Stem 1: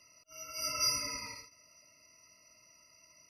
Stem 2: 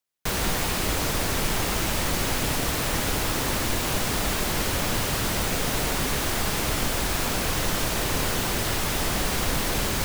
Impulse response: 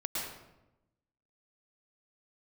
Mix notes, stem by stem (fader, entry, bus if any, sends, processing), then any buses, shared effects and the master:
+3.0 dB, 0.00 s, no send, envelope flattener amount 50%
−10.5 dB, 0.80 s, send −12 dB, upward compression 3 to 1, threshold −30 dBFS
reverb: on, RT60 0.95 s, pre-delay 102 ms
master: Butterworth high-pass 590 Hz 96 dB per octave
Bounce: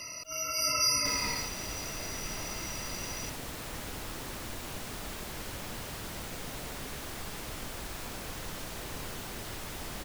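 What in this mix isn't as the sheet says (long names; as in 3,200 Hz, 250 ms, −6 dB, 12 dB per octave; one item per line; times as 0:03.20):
stem 2 −10.5 dB → −16.5 dB
master: missing Butterworth high-pass 590 Hz 96 dB per octave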